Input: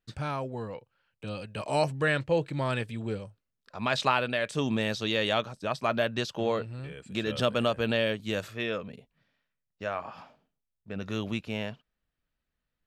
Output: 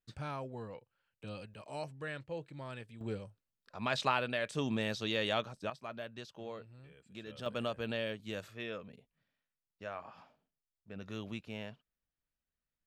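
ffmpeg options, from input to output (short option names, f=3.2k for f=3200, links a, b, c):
-af "asetnsamples=n=441:p=0,asendcmd='1.54 volume volume -15.5dB;3.01 volume volume -6dB;5.7 volume volume -16.5dB;7.46 volume volume -10dB',volume=-8dB"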